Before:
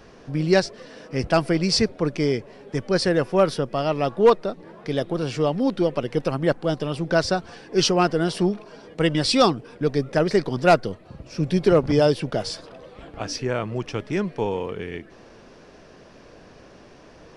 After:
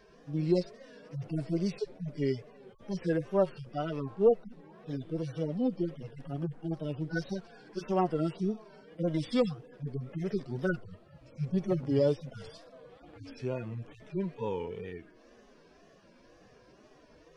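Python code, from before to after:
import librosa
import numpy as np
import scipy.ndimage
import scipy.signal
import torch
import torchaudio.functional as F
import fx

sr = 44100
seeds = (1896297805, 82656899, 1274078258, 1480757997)

y = fx.hpss_only(x, sr, part='harmonic')
y = fx.wow_flutter(y, sr, seeds[0], rate_hz=2.1, depth_cents=94.0)
y = y * 10.0 ** (-7.5 / 20.0)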